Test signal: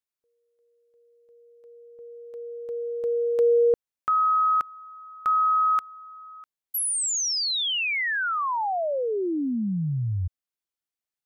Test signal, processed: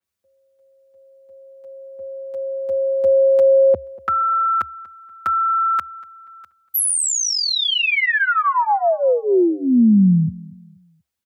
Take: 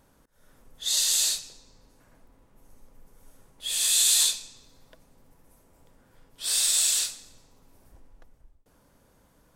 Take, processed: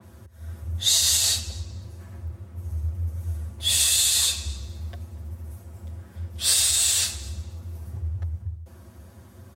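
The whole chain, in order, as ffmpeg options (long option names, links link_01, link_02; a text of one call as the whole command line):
ffmpeg -i in.wav -filter_complex "[0:a]lowshelf=frequency=120:gain=11,aecho=1:1:6.6:0.97,alimiter=limit=-14dB:level=0:latency=1:release=122,afreqshift=68,asplit=2[link_01][link_02];[link_02]adelay=240,lowpass=frequency=3400:poles=1,volume=-21dB,asplit=2[link_03][link_04];[link_04]adelay=240,lowpass=frequency=3400:poles=1,volume=0.35,asplit=2[link_05][link_06];[link_06]adelay=240,lowpass=frequency=3400:poles=1,volume=0.35[link_07];[link_03][link_05][link_07]amix=inputs=3:normalize=0[link_08];[link_01][link_08]amix=inputs=2:normalize=0,adynamicequalizer=threshold=0.0158:dfrequency=3600:dqfactor=0.7:tfrequency=3600:tqfactor=0.7:attack=5:release=100:ratio=0.375:range=2.5:mode=cutabove:tftype=highshelf,volume=5.5dB" out.wav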